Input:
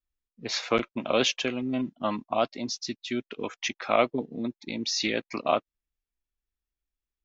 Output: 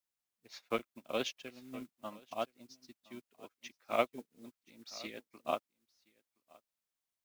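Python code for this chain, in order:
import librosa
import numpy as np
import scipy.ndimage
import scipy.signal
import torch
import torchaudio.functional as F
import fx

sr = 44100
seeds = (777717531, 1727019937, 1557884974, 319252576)

y = fx.dmg_noise_colour(x, sr, seeds[0], colour='white', level_db=-47.0)
y = y + 10.0 ** (-11.0 / 20.0) * np.pad(y, (int(1020 * sr / 1000.0), 0))[:len(y)]
y = fx.upward_expand(y, sr, threshold_db=-45.0, expansion=2.5)
y = y * librosa.db_to_amplitude(-5.5)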